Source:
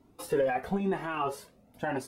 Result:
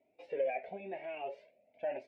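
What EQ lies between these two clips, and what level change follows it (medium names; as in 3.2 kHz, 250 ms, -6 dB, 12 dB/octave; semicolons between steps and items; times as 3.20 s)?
two resonant band-passes 1.2 kHz, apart 1.9 oct; distance through air 140 m; +3.0 dB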